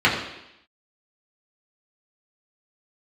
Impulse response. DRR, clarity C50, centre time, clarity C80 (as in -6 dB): -6.0 dB, 5.5 dB, 37 ms, 7.5 dB